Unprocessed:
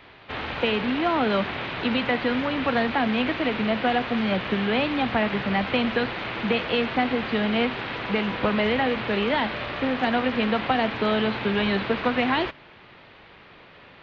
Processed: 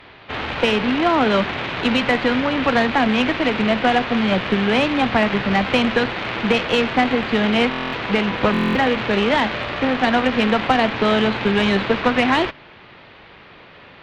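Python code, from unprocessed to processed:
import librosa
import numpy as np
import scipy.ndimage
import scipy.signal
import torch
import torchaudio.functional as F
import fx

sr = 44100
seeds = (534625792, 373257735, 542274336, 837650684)

y = fx.cheby_harmonics(x, sr, harmonics=(6, 7, 8), levels_db=(-24, -36, -42), full_scale_db=-11.0)
y = fx.buffer_glitch(y, sr, at_s=(7.7, 8.52), block=1024, repeats=9)
y = F.gain(torch.from_numpy(y), 6.0).numpy()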